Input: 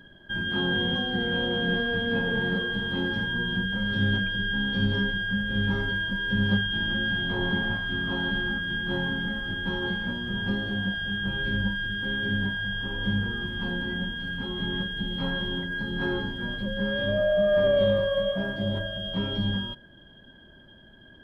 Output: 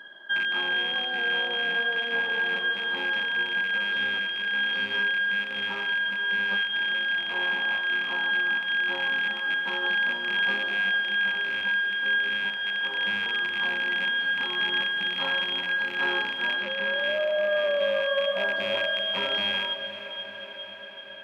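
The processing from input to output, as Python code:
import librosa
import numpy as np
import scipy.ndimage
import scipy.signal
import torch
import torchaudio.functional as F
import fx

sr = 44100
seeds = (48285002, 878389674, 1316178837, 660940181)

p1 = fx.rattle_buzz(x, sr, strikes_db=-32.0, level_db=-28.0)
p2 = scipy.signal.sosfilt(scipy.signal.butter(2, 850.0, 'highpass', fs=sr, output='sos'), p1)
p3 = fx.high_shelf(p2, sr, hz=3600.0, db=-10.5)
p4 = fx.rider(p3, sr, range_db=10, speed_s=0.5)
p5 = fx.air_absorb(p4, sr, metres=99.0, at=(16.55, 16.99))
p6 = p5 + fx.echo_diffused(p5, sr, ms=463, feedback_pct=69, wet_db=-11.5, dry=0)
y = p6 * librosa.db_to_amplitude(6.5)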